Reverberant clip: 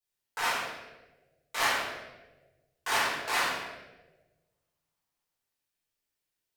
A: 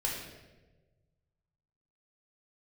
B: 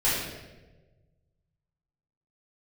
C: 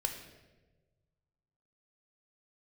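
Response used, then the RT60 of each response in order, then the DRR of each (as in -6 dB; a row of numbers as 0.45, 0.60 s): B; 1.2, 1.2, 1.3 s; -4.0, -11.5, 3.5 dB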